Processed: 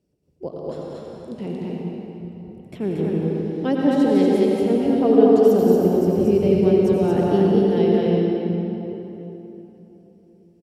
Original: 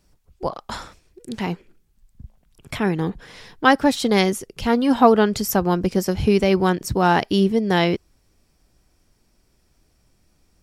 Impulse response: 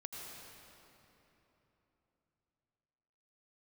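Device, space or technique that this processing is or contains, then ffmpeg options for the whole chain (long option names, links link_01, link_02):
stadium PA: -filter_complex "[0:a]highpass=120,equalizer=frequency=2800:width_type=o:width=0.28:gain=6,aecho=1:1:183.7|230.3:0.282|0.794[link_01];[1:a]atrim=start_sample=2205[link_02];[link_01][link_02]afir=irnorm=-1:irlink=0,lowshelf=frequency=700:width_type=q:width=1.5:gain=13.5,volume=-12.5dB"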